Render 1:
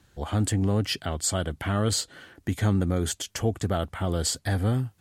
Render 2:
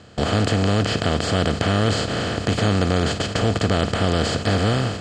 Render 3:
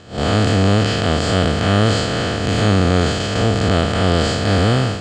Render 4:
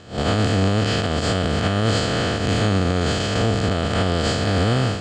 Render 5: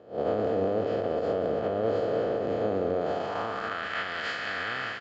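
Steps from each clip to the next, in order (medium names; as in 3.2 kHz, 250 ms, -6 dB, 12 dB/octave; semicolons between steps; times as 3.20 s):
spectral levelling over time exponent 0.2; low-pass 3.9 kHz 12 dB/octave; gate with hold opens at -14 dBFS
spectral blur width 113 ms; trim +5.5 dB
peak limiter -8 dBFS, peak gain reduction 6.5 dB; trim -1.5 dB
band-pass sweep 510 Hz -> 1.8 kHz, 2.91–3.88 s; delay 187 ms -8.5 dB; resampled via 16 kHz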